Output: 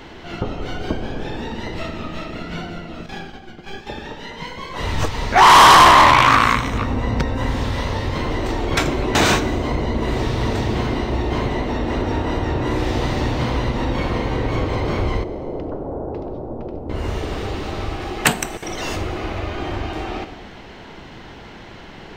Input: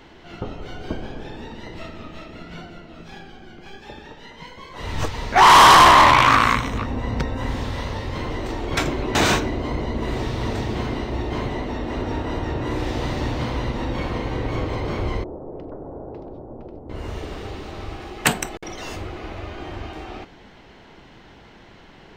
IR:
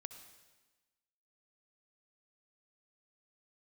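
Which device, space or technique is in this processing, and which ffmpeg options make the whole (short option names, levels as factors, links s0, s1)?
ducked reverb: -filter_complex "[0:a]asettb=1/sr,asplit=3[s0][s1][s2];[s0]atrim=end=3.064[s3];[s1]atrim=start=3.06:end=3.87,asetpts=PTS-STARTPTS,afade=t=in:d=0.004:c=qsin,afade=t=out:st=0.806:d=0.004:c=qsin,agate=range=0.251:threshold=0.01:ratio=16:detection=peak[s4];[s2]atrim=start=3.866[s5];[s3][s4]acrossfade=d=0.004:c1=hsin:c2=qsin[s6];[s6][s5]acrossfade=d=0.004:c1=qsin:c2=hsin,asplit=3[s7][s8][s9];[1:a]atrim=start_sample=2205[s10];[s8][s10]afir=irnorm=-1:irlink=0[s11];[s9]apad=whole_len=977367[s12];[s11][s12]sidechaincompress=threshold=0.0398:ratio=8:attack=16:release=511,volume=2.82[s13];[s7][s13]amix=inputs=2:normalize=0"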